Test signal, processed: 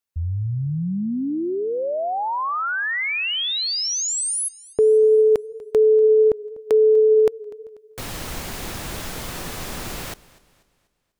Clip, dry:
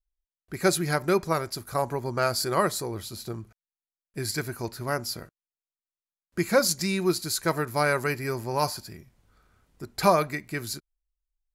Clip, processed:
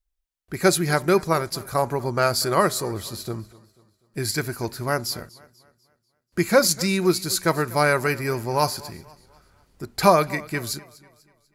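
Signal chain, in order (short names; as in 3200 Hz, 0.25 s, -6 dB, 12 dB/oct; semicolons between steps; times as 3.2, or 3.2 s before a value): warbling echo 0.245 s, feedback 42%, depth 70 cents, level -21 dB; gain +4.5 dB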